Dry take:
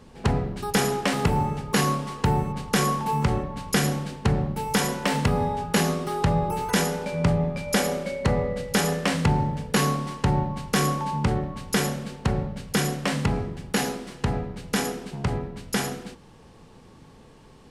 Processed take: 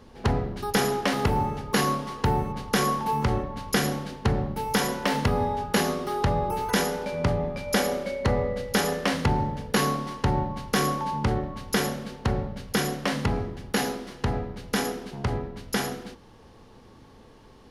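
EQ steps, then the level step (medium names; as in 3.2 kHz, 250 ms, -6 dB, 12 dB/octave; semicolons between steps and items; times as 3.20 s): graphic EQ with 31 bands 160 Hz -9 dB, 2.5 kHz -3 dB, 8 kHz -10 dB; 0.0 dB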